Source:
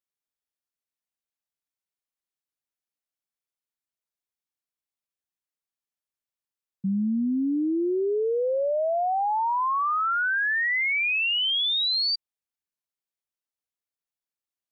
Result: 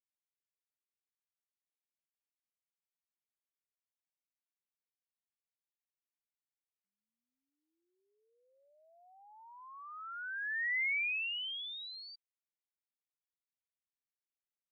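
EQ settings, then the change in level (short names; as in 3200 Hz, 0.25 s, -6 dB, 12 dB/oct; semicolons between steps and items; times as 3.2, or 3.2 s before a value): ladder high-pass 1800 Hz, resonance 50%; air absorption 410 m; -2.0 dB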